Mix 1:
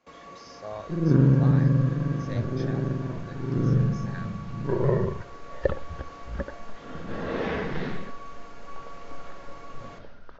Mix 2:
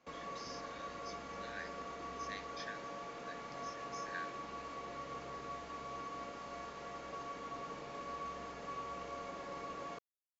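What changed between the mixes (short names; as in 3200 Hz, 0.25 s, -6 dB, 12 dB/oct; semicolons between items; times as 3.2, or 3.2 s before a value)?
speech: add brick-wall FIR high-pass 1400 Hz; second sound: muted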